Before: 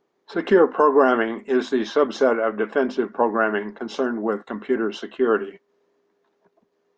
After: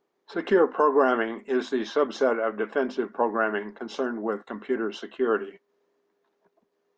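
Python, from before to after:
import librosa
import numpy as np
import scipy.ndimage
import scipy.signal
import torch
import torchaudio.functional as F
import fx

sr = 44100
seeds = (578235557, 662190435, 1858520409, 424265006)

y = fx.peak_eq(x, sr, hz=94.0, db=-4.0, octaves=2.5)
y = y * librosa.db_to_amplitude(-4.0)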